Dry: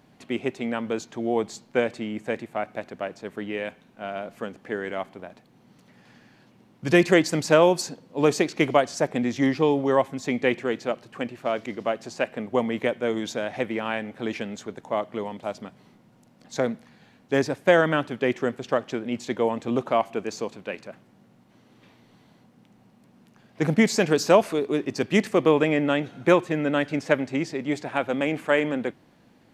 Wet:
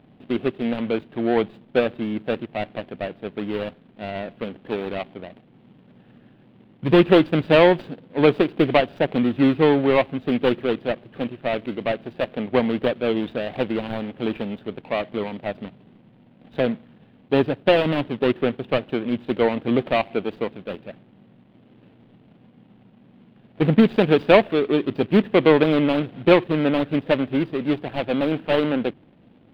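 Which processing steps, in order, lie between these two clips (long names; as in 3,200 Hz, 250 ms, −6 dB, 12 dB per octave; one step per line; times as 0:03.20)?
running median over 41 samples
high shelf with overshoot 4,600 Hz −12.5 dB, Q 3
level +5.5 dB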